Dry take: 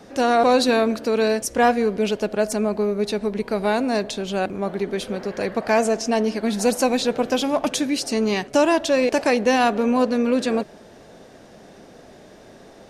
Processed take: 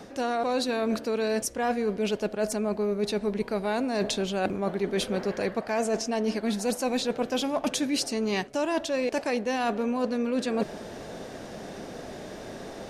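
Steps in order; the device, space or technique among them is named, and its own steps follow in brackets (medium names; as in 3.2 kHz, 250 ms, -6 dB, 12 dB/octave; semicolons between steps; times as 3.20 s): compression on the reversed sound (reverse; compression 12:1, threshold -30 dBFS, peak gain reduction 17.5 dB; reverse); trim +6 dB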